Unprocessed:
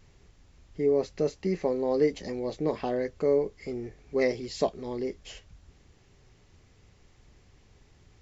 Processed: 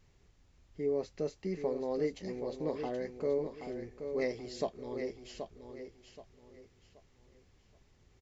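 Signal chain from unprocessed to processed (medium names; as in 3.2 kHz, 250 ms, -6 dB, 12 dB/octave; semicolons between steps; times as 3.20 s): feedback delay 777 ms, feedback 31%, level -8 dB; trim -8 dB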